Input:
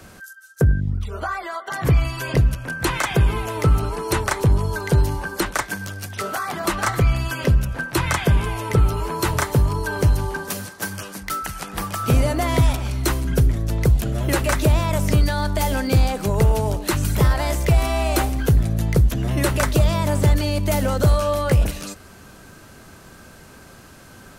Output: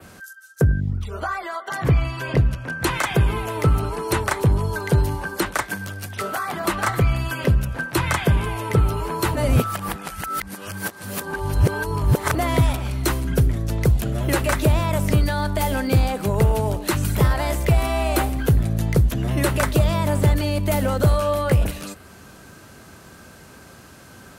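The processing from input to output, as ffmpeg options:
ffmpeg -i in.wav -filter_complex "[0:a]asettb=1/sr,asplit=3[link_01][link_02][link_03];[link_01]atrim=end=1.834[link_04];[link_02]atrim=start=1.83:end=2.84,asetpts=PTS-STARTPTS,afade=type=in:duration=0.004:curve=qsin,afade=type=out:start_time=1.006:duration=0.004:curve=qsin,equalizer=frequency=13000:width_type=o:width=1.5:gain=-10[link_05];[link_03]atrim=start=2.836[link_06];[link_04][link_05]acrossfade=duration=0.004:curve1=hsin:curve2=qsin[link_07];[link_07][link_06]acrossfade=duration=0.004:curve1=qsin:curve2=hsin,asplit=3[link_08][link_09][link_10];[link_08]atrim=end=9.352[link_11];[link_09]atrim=start=9.348:end=12.352,asetpts=PTS-STARTPTS,areverse[link_12];[link_10]atrim=start=12.348[link_13];[link_11][link_12]acrossfade=duration=0.004:curve1=hsin:curve2=hsin[link_14];[link_14][link_13]acrossfade=duration=0.004:curve1=hsin:curve2=hsin,highpass=52,adynamicequalizer=threshold=0.00447:dfrequency=5900:dqfactor=1.5:tfrequency=5900:tqfactor=1.5:attack=5:release=100:ratio=0.375:range=3:mode=cutabove:tftype=bell" out.wav

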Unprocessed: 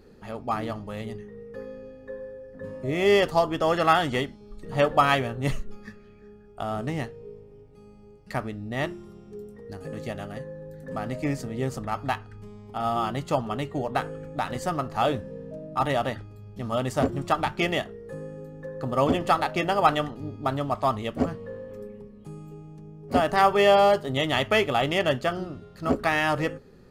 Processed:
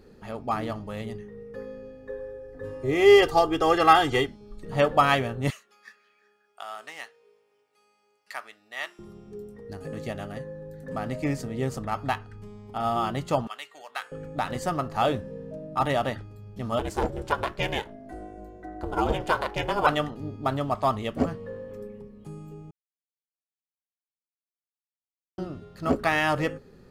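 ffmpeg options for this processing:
ffmpeg -i in.wav -filter_complex "[0:a]asettb=1/sr,asplit=3[link_01][link_02][link_03];[link_01]atrim=end=2.094[link_04];[link_02]atrim=start=2.09:end=4.27,asetpts=PTS-STARTPTS,afade=type=in:duration=0.004:curve=qsin,afade=type=out:start_time=2.176:duration=0.004:curve=qsin,aecho=1:1:2.5:0.84,atrim=end_sample=96138[link_05];[link_03]atrim=start=4.266[link_06];[link_04][link_05]acrossfade=duration=0.004:curve1=hsin:curve2=qsin[link_07];[link_07][link_06]acrossfade=duration=0.004:curve1=qsin:curve2=hsin,asettb=1/sr,asplit=3[link_08][link_09][link_10];[link_08]atrim=end=5.504[link_11];[link_09]atrim=start=5.5:end=8.99,asetpts=PTS-STARTPTS,afade=type=in:duration=0.004:curve=qsin,afade=type=out:start_time=3.486:duration=0.004:curve=qsin,highpass=1200[link_12];[link_10]atrim=start=8.986[link_13];[link_11][link_12]acrossfade=duration=0.004:curve1=hsin:curve2=qsin[link_14];[link_14][link_13]acrossfade=duration=0.004:curve1=qsin:curve2=hsin,asettb=1/sr,asplit=3[link_15][link_16][link_17];[link_15]atrim=end=13.474[link_18];[link_16]atrim=start=13.47:end=14.12,asetpts=PTS-STARTPTS,afade=type=in:duration=0.004:curve=qsin,afade=type=out:start_time=0.646:duration=0.004:curve=qsin,highpass=1500[link_19];[link_17]atrim=start=14.116[link_20];[link_18][link_19]acrossfade=duration=0.004:curve1=hsin:curve2=qsin[link_21];[link_21][link_20]acrossfade=duration=0.004:curve1=qsin:curve2=hsin,asettb=1/sr,asplit=3[link_22][link_23][link_24];[link_22]atrim=end=16.794[link_25];[link_23]atrim=start=16.79:end=19.87,asetpts=PTS-STARTPTS,afade=type=in:duration=0.004:curve=qsin,afade=type=out:start_time=3.076:duration=0.004:curve=qsin,aeval=exprs='val(0)*sin(2*PI*210*n/s)':channel_layout=same[link_26];[link_24]atrim=start=19.866[link_27];[link_25][link_26]acrossfade=duration=0.004:curve1=hsin:curve2=qsin[link_28];[link_28][link_27]acrossfade=duration=0.004:curve1=qsin:curve2=hsin,asplit=3[link_29][link_30][link_31];[link_29]atrim=end=22.71,asetpts=PTS-STARTPTS,afade=type=out:start_time=22.706:duration=0.004:curve=hsin[link_32];[link_30]atrim=start=22.71:end=25.38,asetpts=PTS-STARTPTS,volume=0[link_33];[link_31]atrim=start=25.38,asetpts=PTS-STARTPTS,afade=type=in:duration=0.004:curve=hsin[link_34];[link_32][link_33][link_34]concat=n=3:v=0:a=1" out.wav

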